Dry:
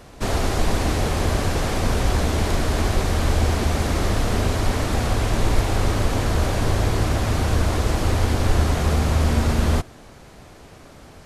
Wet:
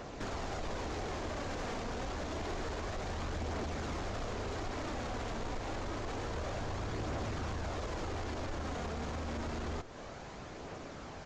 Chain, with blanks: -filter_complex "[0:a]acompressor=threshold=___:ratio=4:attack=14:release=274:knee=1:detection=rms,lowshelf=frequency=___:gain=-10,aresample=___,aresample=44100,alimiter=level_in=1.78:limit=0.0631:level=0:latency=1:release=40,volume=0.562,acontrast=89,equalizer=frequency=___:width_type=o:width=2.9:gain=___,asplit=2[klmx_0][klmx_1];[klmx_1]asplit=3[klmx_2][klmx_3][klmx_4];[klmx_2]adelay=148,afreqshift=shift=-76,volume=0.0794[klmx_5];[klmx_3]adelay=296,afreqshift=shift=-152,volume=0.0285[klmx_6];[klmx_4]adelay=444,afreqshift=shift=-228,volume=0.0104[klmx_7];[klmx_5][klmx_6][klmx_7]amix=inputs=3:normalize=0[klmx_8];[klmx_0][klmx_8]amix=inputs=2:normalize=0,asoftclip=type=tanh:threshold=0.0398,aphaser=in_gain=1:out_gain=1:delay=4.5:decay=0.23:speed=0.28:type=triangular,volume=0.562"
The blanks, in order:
0.0501, 200, 16000, 4.8k, -5